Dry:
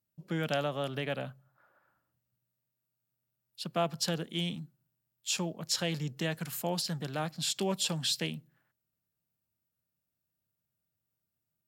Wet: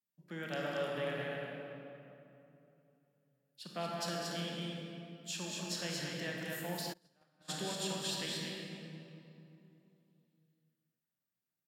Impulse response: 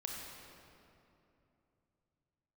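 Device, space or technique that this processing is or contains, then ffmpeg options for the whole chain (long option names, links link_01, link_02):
stadium PA: -filter_complex "[0:a]highpass=frequency=150:width=0.5412,highpass=frequency=150:width=1.3066,equalizer=frequency=1800:width_type=o:width=0.43:gain=6.5,aecho=1:1:198.3|230.3:0.316|0.631[link_01];[1:a]atrim=start_sample=2205[link_02];[link_01][link_02]afir=irnorm=-1:irlink=0,asplit=3[link_03][link_04][link_05];[link_03]afade=type=out:start_time=6.92:duration=0.02[link_06];[link_04]agate=range=-32dB:threshold=-28dB:ratio=16:detection=peak,afade=type=in:start_time=6.92:duration=0.02,afade=type=out:start_time=7.48:duration=0.02[link_07];[link_05]afade=type=in:start_time=7.48:duration=0.02[link_08];[link_06][link_07][link_08]amix=inputs=3:normalize=0,volume=-7dB"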